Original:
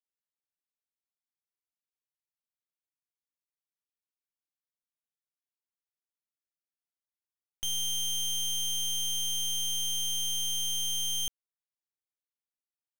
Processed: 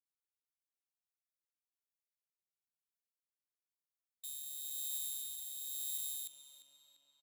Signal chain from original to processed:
formants moved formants +3 semitones
first difference
tempo change 1.8×
rotating-speaker cabinet horn 7.5 Hz, later 1 Hz, at 0:00.70
tape delay 345 ms, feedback 73%, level −8 dB, low-pass 3,600 Hz
level −3.5 dB

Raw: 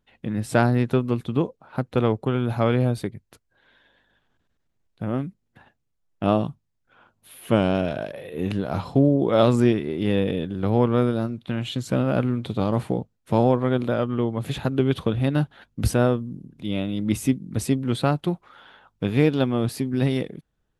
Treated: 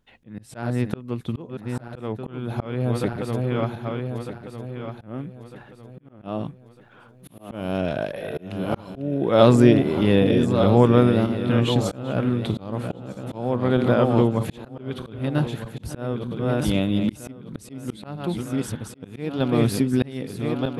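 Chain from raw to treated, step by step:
feedback delay that plays each chunk backwards 626 ms, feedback 59%, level −8.5 dB
volume swells 526 ms
level +4 dB

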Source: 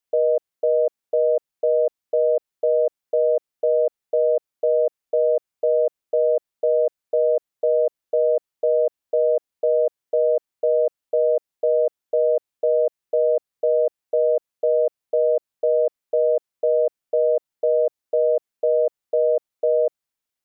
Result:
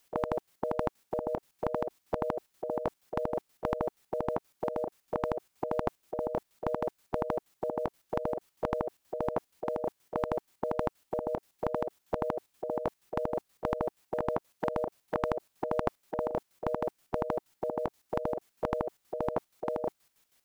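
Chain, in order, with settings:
0:14.18–0:16.31: dynamic equaliser 590 Hz, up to +4 dB, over −29 dBFS, Q 1.9
square-wave tremolo 6.3 Hz, depth 65%, duty 50%
every bin compressed towards the loudest bin 4 to 1

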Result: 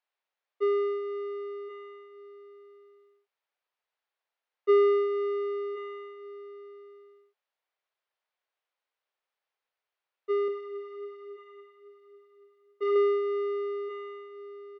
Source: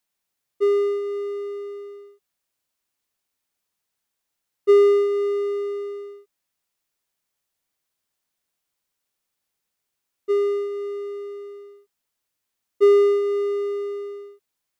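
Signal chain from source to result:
high-pass filter 470 Hz 24 dB per octave
high-frequency loss of the air 290 metres
single-tap delay 1,078 ms −14 dB
0:10.48–0:12.96: flanger 1.2 Hz, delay 5 ms, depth 3.6 ms, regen +33%

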